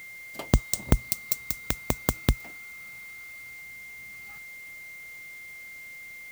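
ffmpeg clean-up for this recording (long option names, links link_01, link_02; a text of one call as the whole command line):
ffmpeg -i in.wav -af "bandreject=frequency=2100:width=30,afwtdn=0.002" out.wav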